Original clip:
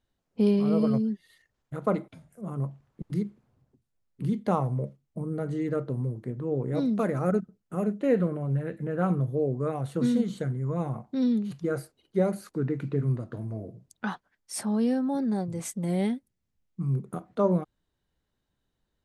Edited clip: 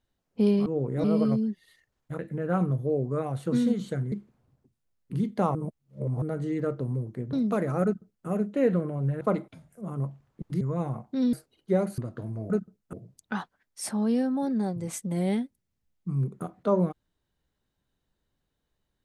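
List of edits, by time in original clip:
1.81–3.21 swap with 8.68–10.61
4.64–5.31 reverse
6.42–6.8 move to 0.66
7.31–7.74 copy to 13.65
11.33–11.79 cut
12.44–13.13 cut

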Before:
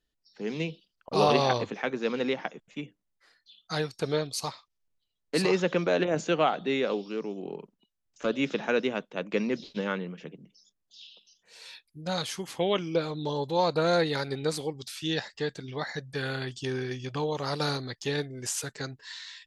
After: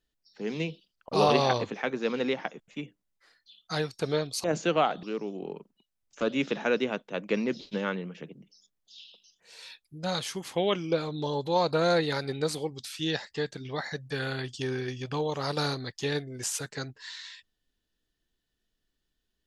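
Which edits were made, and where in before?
4.44–6.07 cut
6.66–7.06 cut

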